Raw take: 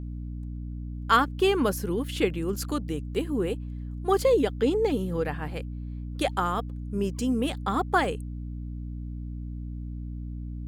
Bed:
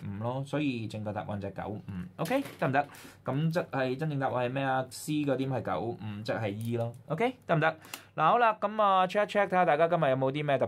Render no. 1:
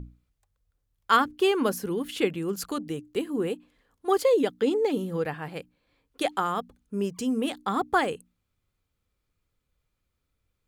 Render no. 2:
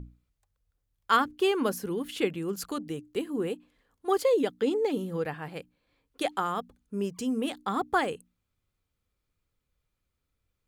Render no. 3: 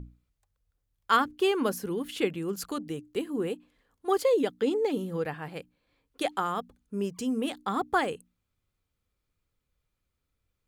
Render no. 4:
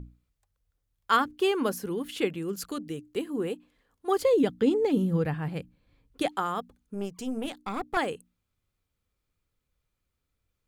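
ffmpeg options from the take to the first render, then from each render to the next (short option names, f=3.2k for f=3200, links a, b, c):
-af "bandreject=f=60:t=h:w=6,bandreject=f=120:t=h:w=6,bandreject=f=180:t=h:w=6,bandreject=f=240:t=h:w=6,bandreject=f=300:t=h:w=6"
-af "volume=-2.5dB"
-af anull
-filter_complex "[0:a]asettb=1/sr,asplit=3[a][b][c];[a]atrim=end=2.434[d];[b]atrim=start=2.43:end=3.06,asetpts=PTS-STARTPTS,afade=t=in:d=0.004:c=qsin,afade=t=out:st=0.626:d=0.004:c=qsin,equalizer=f=870:t=o:w=0.77:g=-6.5[e];[c]atrim=start=3.056[f];[d][e]acrossfade=d=0.004:c1=hsin:c2=qsin[g];[g][f]acrossfade=d=0.004:c1=qsin:c2=hsin,asettb=1/sr,asplit=3[h][i][j];[h]atrim=end=4.204[k];[i]atrim=start=4.2:end=6.28,asetpts=PTS-STARTPTS,afade=t=in:d=0.004:c=qsin,afade=t=out:st=2.076:d=0.004:c=qsin,bass=f=250:g=13,treble=f=4k:g=-1[l];[j]atrim=start=6.276[m];[k][l]acrossfade=d=0.004:c1=hsin:c2=qsin[n];[n][m]acrossfade=d=0.004:c1=qsin:c2=hsin,asettb=1/sr,asplit=3[o][p][q];[o]atrim=end=6.944[r];[p]atrim=start=6.94:end=7.97,asetpts=PTS-STARTPTS,afade=t=in:d=0.004:c=qsin,afade=t=out:st=1.026:d=0.004:c=qsin,aeval=exprs='(tanh(15.8*val(0)+0.65)-tanh(0.65))/15.8':c=same[s];[q]atrim=start=7.966[t];[r][s]acrossfade=d=0.004:c1=hsin:c2=qsin[u];[u][t]acrossfade=d=0.004:c1=qsin:c2=hsin"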